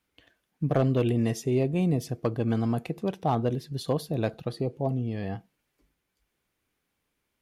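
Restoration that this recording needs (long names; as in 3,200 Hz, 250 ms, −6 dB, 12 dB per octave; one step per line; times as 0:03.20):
clipped peaks rebuilt −15.5 dBFS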